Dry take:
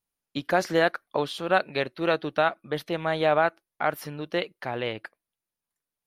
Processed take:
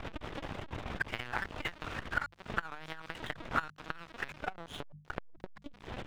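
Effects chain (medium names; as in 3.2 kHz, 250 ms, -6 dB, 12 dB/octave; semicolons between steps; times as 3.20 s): reverse the whole clip; high-pass sweep 1.4 kHz -> 200 Hz, 4.13–5.74 s; added noise pink -42 dBFS; compression 12:1, threshold -35 dBFS, peak gain reduction 22 dB; LPC vocoder at 8 kHz pitch kept; crossover distortion -47.5 dBFS; treble shelf 2.1 kHz -8 dB; hum notches 50/100/150/200 Hz; transformer saturation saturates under 560 Hz; trim +11.5 dB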